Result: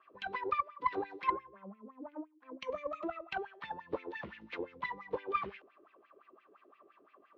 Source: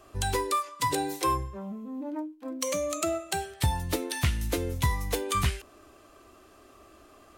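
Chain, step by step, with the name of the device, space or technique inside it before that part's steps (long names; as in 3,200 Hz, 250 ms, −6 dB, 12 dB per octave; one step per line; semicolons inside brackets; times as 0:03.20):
0:03.16–0:03.59: parametric band 950 Hz +13.5 dB 0.34 octaves
wah-wah guitar rig (LFO wah 5.8 Hz 370–2,500 Hz, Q 4.6; tube saturation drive 26 dB, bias 0.75; loudspeaker in its box 85–4,100 Hz, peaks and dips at 100 Hz −7 dB, 200 Hz +8 dB, 710 Hz −4 dB, 1,100 Hz +5 dB)
level +5 dB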